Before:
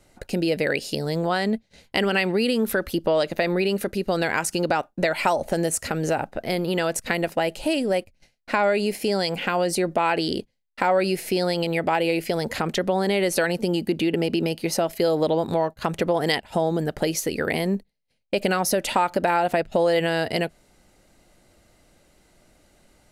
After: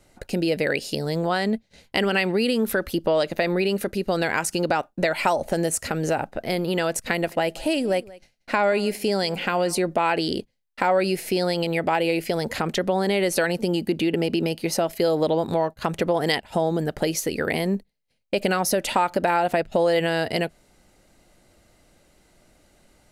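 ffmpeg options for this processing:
-filter_complex "[0:a]asettb=1/sr,asplit=3[s0][s1][s2];[s0]atrim=end=7.134[s3];[s1]atrim=start=7.13:end=9.79,asetpts=PTS-STARTPTS,afade=t=in:d=0.004:c=qsin,afade=t=out:st=2.656:d=0.004:c=qsin,aecho=1:1:182:0.0891,atrim=end_sample=117306[s4];[s2]atrim=start=9.786[s5];[s3][s4]acrossfade=d=0.004:c1=hsin:c2=qsin[s6];[s6][s5]acrossfade=d=0.004:c1=qsin:c2=hsin"

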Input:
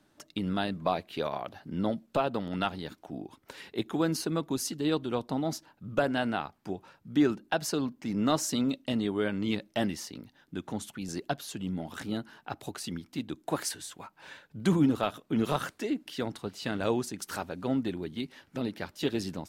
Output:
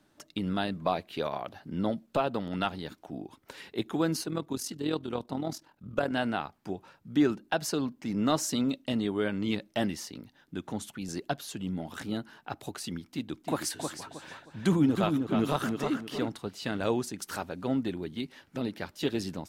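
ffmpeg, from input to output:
-filter_complex "[0:a]asettb=1/sr,asplit=3[s0][s1][s2];[s0]atrim=end=4.234[s3];[s1]atrim=start=4.23:end=6.12,asetpts=PTS-STARTPTS,afade=t=in:d=0.004:c=qsin,afade=t=out:st=1.886:d=0.004:c=qsin,tremolo=f=41:d=0.621[s4];[s2]atrim=start=6.116[s5];[s3][s4]acrossfade=d=0.004:c1=hsin:c2=qsin[s6];[s6][s5]acrossfade=d=0.004:c1=qsin:c2=hsin,asettb=1/sr,asplit=3[s7][s8][s9];[s7]atrim=end=13.024[s10];[s8]atrim=start=13.02:end=16.29,asetpts=PTS-STARTPTS,afade=t=in:d=0.004:c=qsin,afade=t=out:st=3.266:d=0.004:c=qsin,asplit=2[s11][s12];[s12]adelay=314,lowpass=f=3600:p=1,volume=0.562,asplit=2[s13][s14];[s14]adelay=314,lowpass=f=3600:p=1,volume=0.32,asplit=2[s15][s16];[s16]adelay=314,lowpass=f=3600:p=1,volume=0.32,asplit=2[s17][s18];[s18]adelay=314,lowpass=f=3600:p=1,volume=0.32[s19];[s11][s13][s15][s17][s19]amix=inputs=5:normalize=0,atrim=end_sample=144207[s20];[s9]atrim=start=16.286[s21];[s10][s20]acrossfade=d=0.004:c1=hsin:c2=qsin[s22];[s22][s21]acrossfade=d=0.004:c1=qsin:c2=hsin"

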